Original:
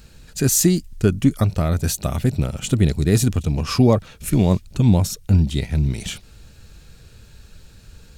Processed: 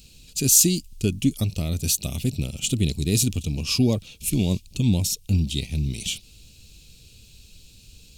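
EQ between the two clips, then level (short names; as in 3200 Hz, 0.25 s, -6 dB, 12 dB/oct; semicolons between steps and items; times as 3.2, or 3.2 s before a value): EQ curve 180 Hz 0 dB, 260 Hz +2 dB, 1700 Hz -15 dB, 2600 Hz +9 dB; -6.0 dB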